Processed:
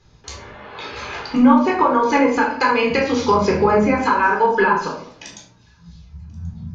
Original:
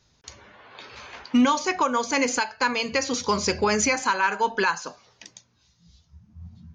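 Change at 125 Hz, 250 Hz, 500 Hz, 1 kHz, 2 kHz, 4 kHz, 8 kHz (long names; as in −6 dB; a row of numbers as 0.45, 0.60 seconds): +10.5, +8.5, +9.0, +8.0, +4.5, −1.5, −9.0 decibels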